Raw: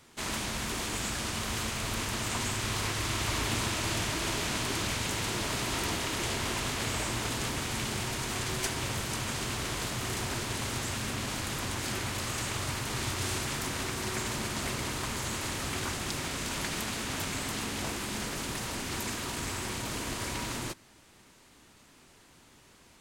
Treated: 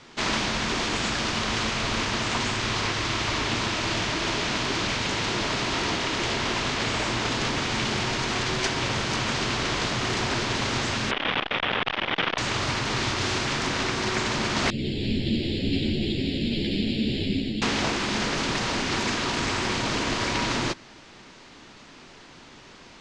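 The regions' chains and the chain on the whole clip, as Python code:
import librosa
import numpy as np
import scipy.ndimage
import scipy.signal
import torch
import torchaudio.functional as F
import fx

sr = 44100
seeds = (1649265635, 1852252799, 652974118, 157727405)

y = fx.chain(x, sr, fx.riaa(side='recording'),
    fx.resample_bad(factor=6, down='none', up='filtered'),
    fx.transformer_sat(knee_hz=1600.0), at=(11.11, 12.38))
y = fx.chain(y, sr, fx.cheby1_bandstop(low_hz=320.0, high_hz=4000.0, order=2),
    fx.resample_bad(factor=6, down='filtered', up='hold'),
    fx.ensemble(), at=(14.7, 17.62))
y = scipy.signal.sosfilt(scipy.signal.butter(4, 5800.0, 'lowpass', fs=sr, output='sos'), y)
y = fx.peak_eq(y, sr, hz=69.0, db=-7.5, octaves=1.5)
y = fx.rider(y, sr, range_db=10, speed_s=0.5)
y = y * 10.0 ** (8.5 / 20.0)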